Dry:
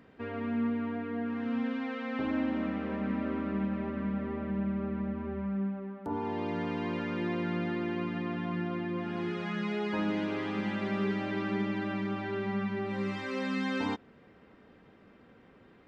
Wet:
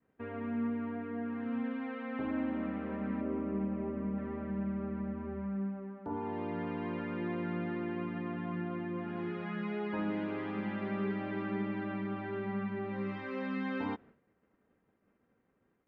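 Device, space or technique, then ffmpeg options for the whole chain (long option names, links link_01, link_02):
hearing-loss simulation: -filter_complex "[0:a]asettb=1/sr,asplit=3[link_01][link_02][link_03];[link_01]atrim=end=3.214[link_04];[link_02]atrim=start=3.21:end=4.18,asetpts=PTS-STARTPTS,afade=type=in:duration=0.004:curve=qsin,afade=type=out:start_time=0.966:duration=0.004:curve=qsin,equalizer=frequency=400:width_type=o:width=0.67:gain=5,equalizer=frequency=1600:width_type=o:width=0.67:gain=-7,equalizer=frequency=4000:width_type=o:width=0.67:gain=-10[link_05];[link_03]atrim=start=4.176[link_06];[link_04][link_05]acrossfade=duration=0.004:curve1=hsin:curve2=qsin[link_07];[link_07][link_06]acrossfade=duration=0.004:curve1=qsin:curve2=hsin,lowpass=2300,agate=range=-33dB:threshold=-48dB:ratio=3:detection=peak,volume=-3.5dB"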